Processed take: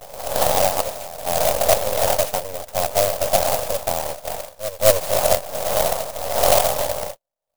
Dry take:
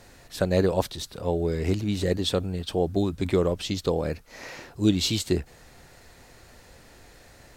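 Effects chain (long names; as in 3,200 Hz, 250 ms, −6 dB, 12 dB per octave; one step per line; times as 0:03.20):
wind on the microphone 500 Hz −27 dBFS
notch filter 450 Hz, Q 12
noise gate −33 dBFS, range −41 dB
parametric band 270 Hz +14 dB 1.5 octaves
full-wave rectification
low shelf with overshoot 450 Hz −10 dB, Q 3
on a send: backwards echo 221 ms −14 dB
on the sum: converter with an unsteady clock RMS 0.13 ms
level −2.5 dB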